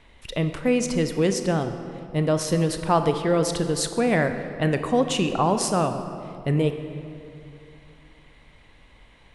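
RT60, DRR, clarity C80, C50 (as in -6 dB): 2.7 s, 7.5 dB, 9.0 dB, 8.5 dB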